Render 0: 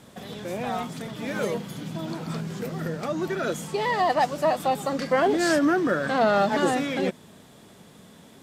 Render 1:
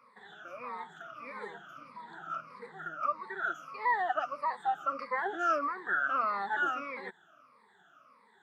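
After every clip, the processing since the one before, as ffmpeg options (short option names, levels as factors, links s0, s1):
-af "afftfilt=real='re*pow(10,23/40*sin(2*PI*(0.93*log(max(b,1)*sr/1024/100)/log(2)-(-1.6)*(pts-256)/sr)))':imag='im*pow(10,23/40*sin(2*PI*(0.93*log(max(b,1)*sr/1024/100)/log(2)-(-1.6)*(pts-256)/sr)))':win_size=1024:overlap=0.75,bandpass=f=1300:t=q:w=4.6:csg=0,volume=0.794"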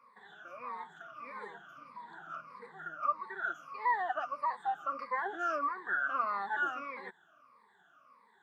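-af "equalizer=f=1200:w=2:g=8,bandreject=f=1300:w=6.9,volume=0.562"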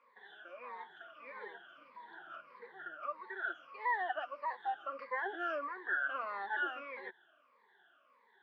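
-af "highpass=340,equalizer=f=360:t=q:w=4:g=6,equalizer=f=540:t=q:w=4:g=4,equalizer=f=1200:t=q:w=4:g=-8,equalizer=f=1700:t=q:w=4:g=5,equalizer=f=3100:t=q:w=4:g=8,lowpass=f=4100:w=0.5412,lowpass=f=4100:w=1.3066,volume=0.708"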